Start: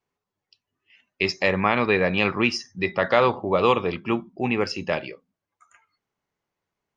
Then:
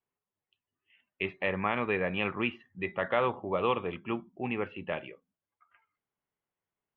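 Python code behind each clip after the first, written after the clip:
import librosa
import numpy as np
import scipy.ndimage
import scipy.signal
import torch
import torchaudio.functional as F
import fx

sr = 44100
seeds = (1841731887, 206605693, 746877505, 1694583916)

y = scipy.signal.sosfilt(scipy.signal.ellip(4, 1.0, 40, 3300.0, 'lowpass', fs=sr, output='sos'), x)
y = y * librosa.db_to_amplitude(-8.5)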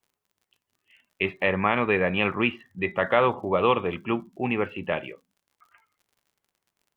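y = fx.dmg_crackle(x, sr, seeds[0], per_s=66.0, level_db=-58.0)
y = y * librosa.db_to_amplitude(7.0)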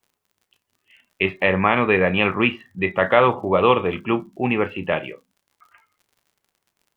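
y = fx.doubler(x, sr, ms=32.0, db=-13.5)
y = y * librosa.db_to_amplitude(5.0)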